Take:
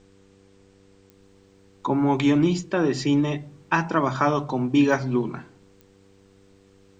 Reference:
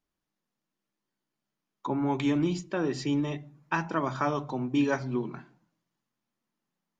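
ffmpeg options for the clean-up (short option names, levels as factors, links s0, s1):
-af "adeclick=t=4,bandreject=f=97.3:t=h:w=4,bandreject=f=194.6:t=h:w=4,bandreject=f=291.9:t=h:w=4,bandreject=f=389.2:t=h:w=4,bandreject=f=486.5:t=h:w=4,agate=range=0.0891:threshold=0.00398,asetnsamples=n=441:p=0,asendcmd='1.12 volume volume -7dB',volume=1"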